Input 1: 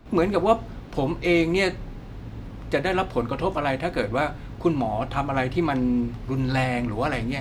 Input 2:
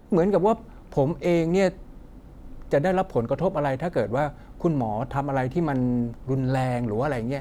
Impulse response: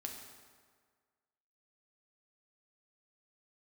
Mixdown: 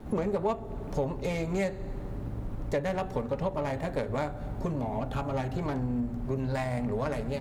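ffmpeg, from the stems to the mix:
-filter_complex "[0:a]adynamicsmooth=sensitivity=1:basefreq=1400,volume=1.19[s0];[1:a]adelay=3.5,volume=1.33,asplit=2[s1][s2];[s2]volume=0.299[s3];[2:a]atrim=start_sample=2205[s4];[s3][s4]afir=irnorm=-1:irlink=0[s5];[s0][s1][s5]amix=inputs=3:normalize=0,acompressor=threshold=0.0282:ratio=2.5"

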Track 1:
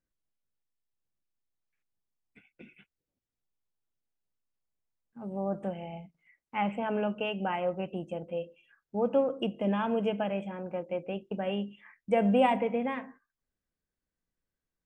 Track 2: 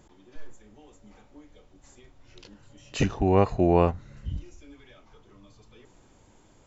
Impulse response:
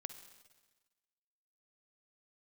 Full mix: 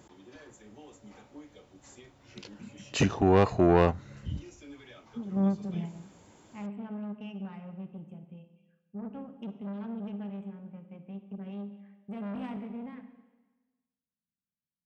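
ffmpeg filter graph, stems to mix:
-filter_complex "[0:a]lowshelf=f=290:t=q:w=3:g=10,bandreject=f=500:w=12,aeval=exprs='(tanh(10*val(0)+0.6)-tanh(0.6))/10':c=same,volume=0.944,asplit=2[s0][s1];[s1]volume=0.282[s2];[1:a]asoftclip=type=tanh:threshold=0.158,volume=1.33,asplit=2[s3][s4];[s4]apad=whole_len=655099[s5];[s0][s5]sidechaingate=range=0.0224:threshold=0.00355:ratio=16:detection=peak[s6];[2:a]atrim=start_sample=2205[s7];[s2][s7]afir=irnorm=-1:irlink=0[s8];[s6][s3][s8]amix=inputs=3:normalize=0,highpass=97"

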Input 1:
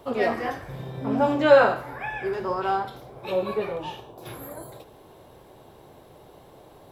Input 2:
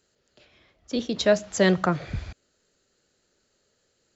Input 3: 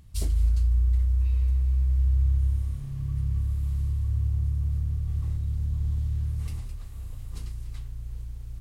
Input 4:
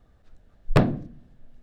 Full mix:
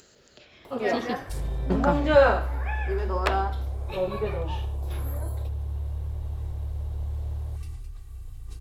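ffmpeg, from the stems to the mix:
-filter_complex "[0:a]adelay=650,volume=0.75[s0];[1:a]volume=0.631,asplit=3[s1][s2][s3];[s1]atrim=end=1.17,asetpts=PTS-STARTPTS,afade=t=out:st=1.166:d=0.004:c=hsin[s4];[s2]atrim=start=1.17:end=1.7,asetpts=PTS-STARTPTS,volume=0[s5];[s3]atrim=start=1.7,asetpts=PTS-STARTPTS,afade=t=in:d=0.004:c=hsin[s6];[s4][s5][s6]concat=n=3:v=0:a=1[s7];[2:a]aecho=1:1:2.6:0.77,alimiter=limit=0.119:level=0:latency=1,adelay=1150,volume=0.473[s8];[3:a]highpass=780,adelay=2500,volume=1.06[s9];[s0][s7][s8][s9]amix=inputs=4:normalize=0,acompressor=mode=upward:threshold=0.00794:ratio=2.5"

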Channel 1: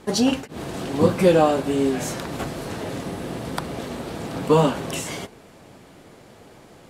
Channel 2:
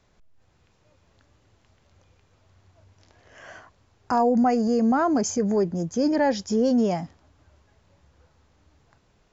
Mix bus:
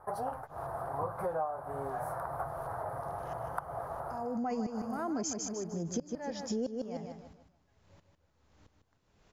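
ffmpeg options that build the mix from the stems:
-filter_complex "[0:a]firequalizer=gain_entry='entry(140,0);entry(210,-20);entry(690,11);entry(1300,8);entry(2700,-29);entry(4800,-22);entry(7000,-27);entry(9900,-3)':delay=0.05:min_phase=1,volume=0.316[s0];[1:a]aeval=exprs='val(0)*pow(10,-30*if(lt(mod(-1.5*n/s,1),2*abs(-1.5)/1000),1-mod(-1.5*n/s,1)/(2*abs(-1.5)/1000),(mod(-1.5*n/s,1)-2*abs(-1.5)/1000)/(1-2*abs(-1.5)/1000))/20)':c=same,volume=1.26,asplit=3[s1][s2][s3];[s2]volume=0.447[s4];[s3]apad=whole_len=308268[s5];[s0][s5]sidechaincompress=threshold=0.00708:ratio=8:attack=16:release=101[s6];[s4]aecho=0:1:152|304|456|608|760:1|0.35|0.122|0.0429|0.015[s7];[s6][s1][s7]amix=inputs=3:normalize=0,acompressor=threshold=0.0251:ratio=6"

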